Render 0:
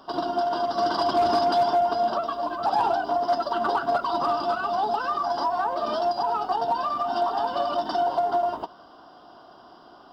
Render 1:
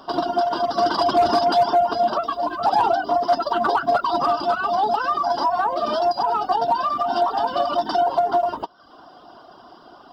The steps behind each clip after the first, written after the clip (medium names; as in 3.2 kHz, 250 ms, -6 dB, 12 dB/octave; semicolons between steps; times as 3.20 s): reverb removal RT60 0.68 s; trim +5.5 dB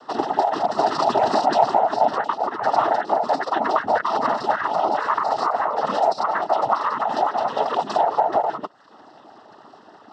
noise-vocoded speech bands 12; treble shelf 4.2 kHz -7 dB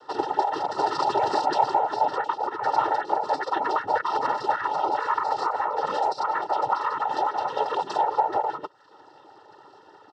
comb 2.2 ms, depth 75%; trim -5.5 dB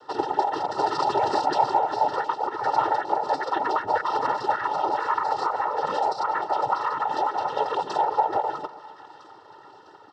bass shelf 180 Hz +4 dB; two-band feedback delay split 1.1 kHz, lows 135 ms, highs 653 ms, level -15 dB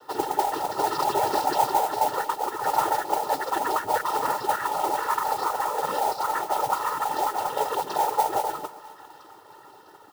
modulation noise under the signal 14 dB; trim -1 dB